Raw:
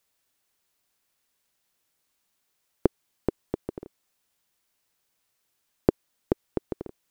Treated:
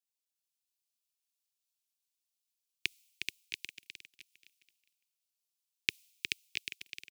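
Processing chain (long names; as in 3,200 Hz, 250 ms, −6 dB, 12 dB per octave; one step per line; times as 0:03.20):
transient designer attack +8 dB, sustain −10 dB
elliptic high-pass filter 2,400 Hz, stop band 50 dB
bouncing-ball delay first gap 360 ms, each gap 0.85×, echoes 5
multiband upward and downward expander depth 100%
level +7 dB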